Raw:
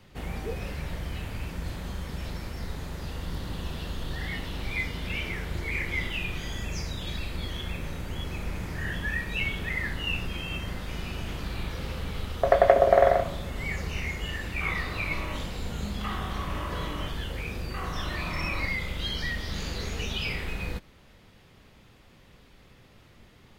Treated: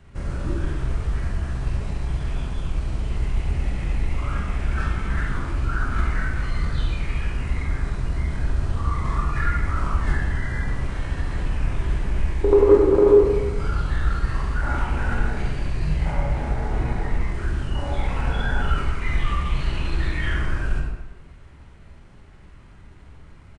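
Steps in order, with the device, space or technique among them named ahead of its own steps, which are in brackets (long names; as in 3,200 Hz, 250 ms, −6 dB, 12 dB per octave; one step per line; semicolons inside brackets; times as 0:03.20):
0:16.12–0:17.28: high-shelf EQ 8,000 Hz −4 dB
monster voice (pitch shifter −5 semitones; formants moved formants −3 semitones; low-shelf EQ 170 Hz +9 dB; convolution reverb RT60 1.1 s, pre-delay 18 ms, DRR −1 dB)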